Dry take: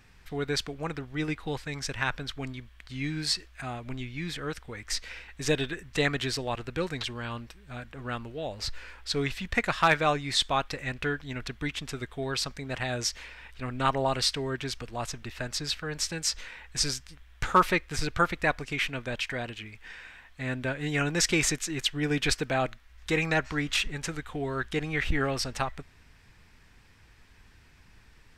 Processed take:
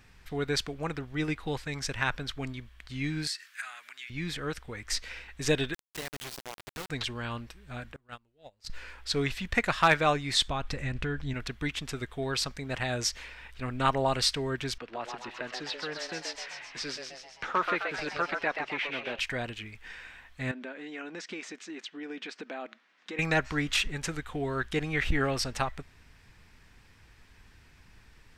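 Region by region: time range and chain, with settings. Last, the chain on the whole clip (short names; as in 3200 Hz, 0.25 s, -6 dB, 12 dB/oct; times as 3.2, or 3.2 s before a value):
3.27–4.1 high shelf 4800 Hz +11.5 dB + compressor 2.5:1, threshold -39 dBFS + resonant high-pass 1600 Hz, resonance Q 2.6
5.74–6.9 compressor 2.5:1, threshold -43 dBFS + requantised 6-bit, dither none
7.96–8.7 gate -31 dBFS, range -32 dB + high shelf 4800 Hz +7.5 dB + core saturation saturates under 330 Hz
10.48–11.34 low shelf 210 Hz +11.5 dB + compressor 4:1, threshold -28 dBFS + LPF 11000 Hz
14.78–19.19 three-band isolator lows -22 dB, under 210 Hz, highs -23 dB, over 4300 Hz + compressor 1.5:1, threshold -34 dBFS + frequency-shifting echo 0.13 s, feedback 56%, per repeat +130 Hz, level -4.5 dB
20.51–23.19 compressor 4:1, threshold -36 dBFS + brick-wall FIR high-pass 180 Hz + air absorption 120 m
whole clip: dry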